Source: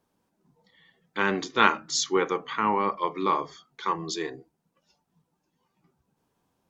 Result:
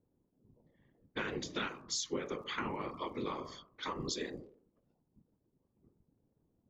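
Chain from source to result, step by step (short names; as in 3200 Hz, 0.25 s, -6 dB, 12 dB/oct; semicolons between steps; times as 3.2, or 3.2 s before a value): bell 990 Hz -9 dB 1.7 oct; de-hum 49.11 Hz, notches 25; compressor 6:1, threshold -37 dBFS, peak gain reduction 17 dB; whisperiser; crackle 85/s -62 dBFS; low-pass opened by the level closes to 530 Hz, open at -39.5 dBFS; gain +2 dB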